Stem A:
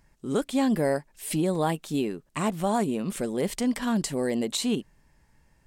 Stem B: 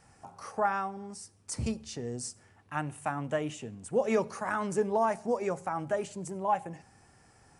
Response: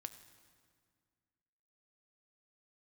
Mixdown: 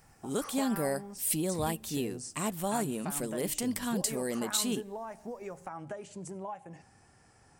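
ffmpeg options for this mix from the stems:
-filter_complex "[0:a]aemphasis=mode=production:type=50fm,volume=-7.5dB,asplit=2[link_01][link_02];[link_02]volume=-14dB[link_03];[1:a]acompressor=threshold=-36dB:ratio=8,volume=-1.5dB[link_04];[2:a]atrim=start_sample=2205[link_05];[link_03][link_05]afir=irnorm=-1:irlink=0[link_06];[link_01][link_04][link_06]amix=inputs=3:normalize=0"

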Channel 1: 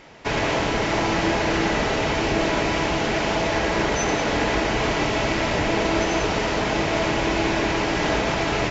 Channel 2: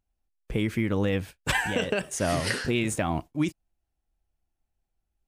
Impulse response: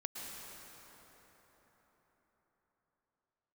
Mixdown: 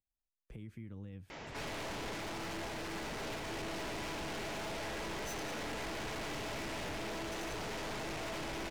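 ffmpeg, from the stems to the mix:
-filter_complex "[0:a]aeval=exprs='(tanh(44.7*val(0)+0.35)-tanh(0.35))/44.7':channel_layout=same,adelay=1300,volume=1dB[link_01];[1:a]acrossover=split=230[link_02][link_03];[link_03]acompressor=threshold=-39dB:ratio=10[link_04];[link_02][link_04]amix=inputs=2:normalize=0,volume=-17dB[link_05];[link_01][link_05]amix=inputs=2:normalize=0,alimiter=level_in=13dB:limit=-24dB:level=0:latency=1:release=27,volume=-13dB"

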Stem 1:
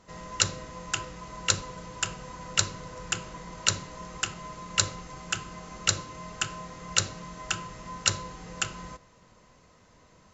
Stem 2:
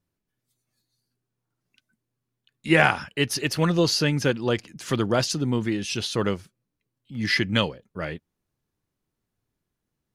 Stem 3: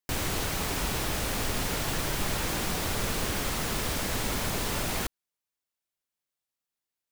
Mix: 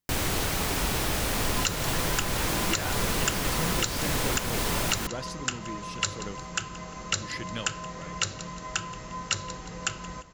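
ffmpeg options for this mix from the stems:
ffmpeg -i stem1.wav -i stem2.wav -i stem3.wav -filter_complex "[0:a]adelay=1250,volume=3dB,asplit=2[link_01][link_02];[link_02]volume=-20.5dB[link_03];[1:a]volume=-14dB[link_04];[2:a]volume=2.5dB[link_05];[link_03]aecho=0:1:174|348|522|696|870:1|0.36|0.13|0.0467|0.0168[link_06];[link_01][link_04][link_05][link_06]amix=inputs=4:normalize=0,alimiter=limit=-12dB:level=0:latency=1:release=215" out.wav

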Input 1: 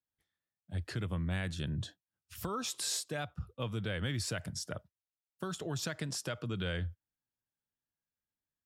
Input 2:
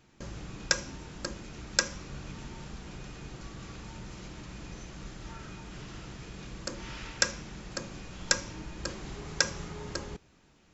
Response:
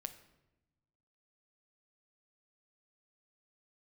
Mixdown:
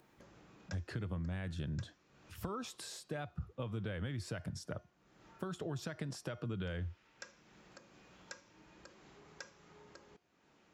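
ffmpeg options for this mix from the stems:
-filter_complex "[0:a]acompressor=threshold=-38dB:ratio=6,volume=2dB,asplit=2[link_01][link_02];[1:a]highpass=frequency=390:poles=1,adynamicequalizer=threshold=0.00562:dfrequency=1600:dqfactor=0.7:tfrequency=1600:tqfactor=0.7:attack=5:release=100:ratio=0.375:range=2:mode=boostabove:tftype=highshelf,volume=-19dB[link_03];[link_02]apad=whole_len=473517[link_04];[link_03][link_04]sidechaincompress=threshold=-42dB:ratio=8:attack=41:release=853[link_05];[link_01][link_05]amix=inputs=2:normalize=0,highshelf=frequency=2700:gain=-11.5,bandreject=frequency=356.5:width_type=h:width=4,bandreject=frequency=713:width_type=h:width=4,bandreject=frequency=1069.5:width_type=h:width=4,bandreject=frequency=1426:width_type=h:width=4,bandreject=frequency=1782.5:width_type=h:width=4,bandreject=frequency=2139:width_type=h:width=4,bandreject=frequency=2495.5:width_type=h:width=4,bandreject=frequency=2852:width_type=h:width=4,bandreject=frequency=3208.5:width_type=h:width=4,bandreject=frequency=3565:width_type=h:width=4,bandreject=frequency=3921.5:width_type=h:width=4,bandreject=frequency=4278:width_type=h:width=4,bandreject=frequency=4634.5:width_type=h:width=4,bandreject=frequency=4991:width_type=h:width=4,bandreject=frequency=5347.5:width_type=h:width=4,bandreject=frequency=5704:width_type=h:width=4,bandreject=frequency=6060.5:width_type=h:width=4,bandreject=frequency=6417:width_type=h:width=4,acompressor=mode=upward:threshold=-51dB:ratio=2.5"

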